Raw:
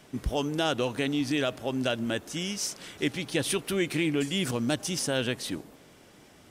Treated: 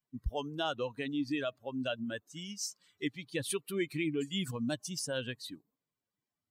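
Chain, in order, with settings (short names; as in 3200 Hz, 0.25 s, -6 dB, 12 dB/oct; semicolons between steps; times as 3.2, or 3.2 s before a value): per-bin expansion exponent 2; gain -3 dB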